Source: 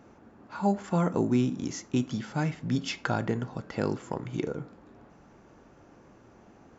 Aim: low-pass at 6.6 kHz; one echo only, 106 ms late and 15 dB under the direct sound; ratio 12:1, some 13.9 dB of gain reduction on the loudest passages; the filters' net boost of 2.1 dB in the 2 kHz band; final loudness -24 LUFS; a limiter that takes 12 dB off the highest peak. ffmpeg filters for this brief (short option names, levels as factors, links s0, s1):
-af "lowpass=6600,equalizer=f=2000:t=o:g=3,acompressor=threshold=0.0178:ratio=12,alimiter=level_in=2.37:limit=0.0631:level=0:latency=1,volume=0.422,aecho=1:1:106:0.178,volume=9.44"